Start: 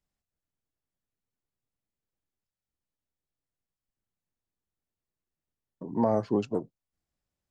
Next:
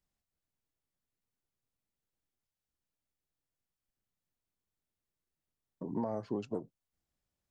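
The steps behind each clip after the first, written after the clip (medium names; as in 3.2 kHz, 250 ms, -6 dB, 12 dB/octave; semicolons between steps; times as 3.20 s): compression 6:1, threshold -31 dBFS, peak gain reduction 11 dB; trim -1 dB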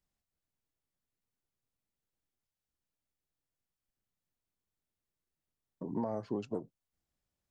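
no audible change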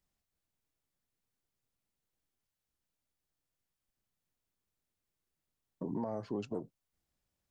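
peak limiter -29.5 dBFS, peak gain reduction 5.5 dB; trim +2 dB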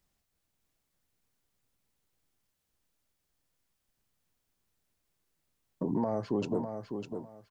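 feedback delay 602 ms, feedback 22%, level -7 dB; trim +6.5 dB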